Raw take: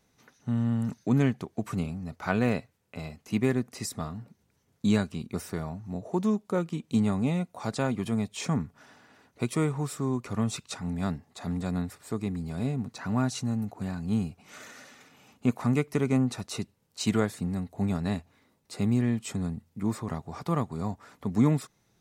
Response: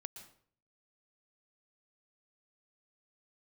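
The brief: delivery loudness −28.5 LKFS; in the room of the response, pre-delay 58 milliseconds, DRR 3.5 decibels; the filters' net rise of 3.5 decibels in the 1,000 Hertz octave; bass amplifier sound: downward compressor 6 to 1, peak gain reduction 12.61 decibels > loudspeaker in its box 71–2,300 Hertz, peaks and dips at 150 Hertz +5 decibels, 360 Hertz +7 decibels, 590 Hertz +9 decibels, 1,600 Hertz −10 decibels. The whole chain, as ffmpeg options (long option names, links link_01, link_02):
-filter_complex "[0:a]equalizer=frequency=1000:width_type=o:gain=4,asplit=2[link_01][link_02];[1:a]atrim=start_sample=2205,adelay=58[link_03];[link_02][link_03]afir=irnorm=-1:irlink=0,volume=1dB[link_04];[link_01][link_04]amix=inputs=2:normalize=0,acompressor=threshold=-29dB:ratio=6,highpass=frequency=71:width=0.5412,highpass=frequency=71:width=1.3066,equalizer=frequency=150:width_type=q:width=4:gain=5,equalizer=frequency=360:width_type=q:width=4:gain=7,equalizer=frequency=590:width_type=q:width=4:gain=9,equalizer=frequency=1600:width_type=q:width=4:gain=-10,lowpass=frequency=2300:width=0.5412,lowpass=frequency=2300:width=1.3066,volume=4dB"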